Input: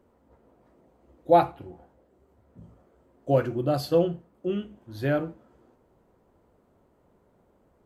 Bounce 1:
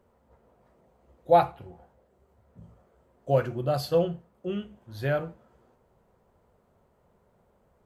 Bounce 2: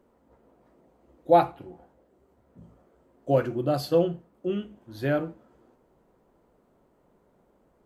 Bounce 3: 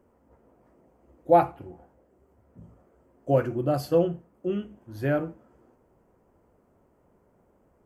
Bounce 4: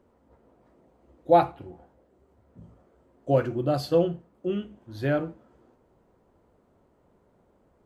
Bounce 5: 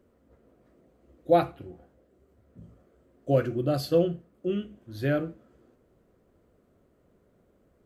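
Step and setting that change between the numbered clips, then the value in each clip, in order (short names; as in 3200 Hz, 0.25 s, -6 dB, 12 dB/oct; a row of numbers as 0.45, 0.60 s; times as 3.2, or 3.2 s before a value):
bell, frequency: 300, 86, 3800, 15000, 890 Hz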